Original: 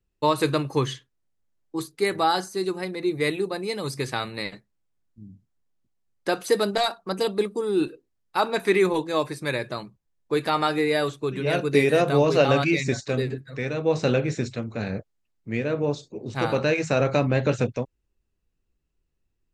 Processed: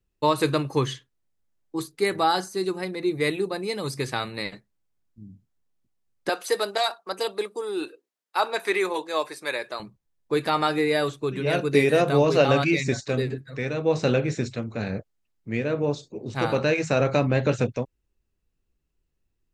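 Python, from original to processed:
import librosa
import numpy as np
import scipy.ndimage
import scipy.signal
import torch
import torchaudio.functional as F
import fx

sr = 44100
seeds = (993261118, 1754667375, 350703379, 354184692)

y = fx.highpass(x, sr, hz=490.0, slope=12, at=(6.29, 9.8))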